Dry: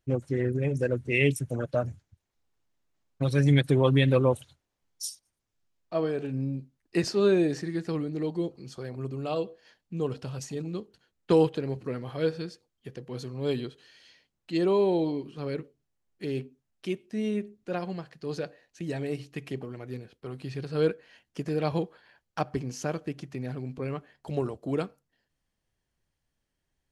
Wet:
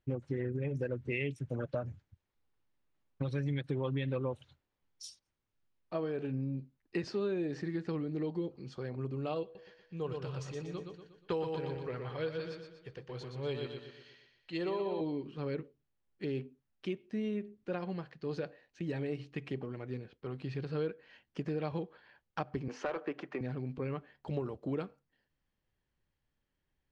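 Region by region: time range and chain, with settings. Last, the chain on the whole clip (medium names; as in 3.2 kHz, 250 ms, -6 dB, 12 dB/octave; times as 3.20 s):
9.43–15.01 s: peaking EQ 240 Hz -12 dB 1.2 oct + feedback delay 120 ms, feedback 46%, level -5.5 dB
22.68–23.41 s: three-band isolator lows -18 dB, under 250 Hz, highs -13 dB, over 2.1 kHz + overdrive pedal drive 18 dB, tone 4.6 kHz, clips at -19.5 dBFS
whole clip: low-pass 3.7 kHz 12 dB/octave; band-stop 680 Hz, Q 12; compression 5:1, threshold -30 dBFS; trim -2 dB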